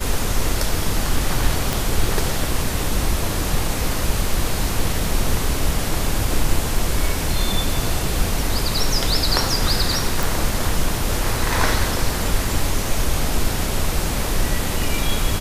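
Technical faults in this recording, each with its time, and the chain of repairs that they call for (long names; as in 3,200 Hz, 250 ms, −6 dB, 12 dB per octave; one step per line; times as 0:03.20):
0:01.73: click
0:10.23: click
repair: click removal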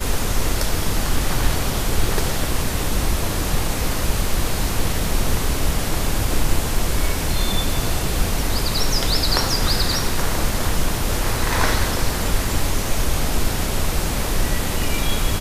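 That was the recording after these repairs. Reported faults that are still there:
none of them is left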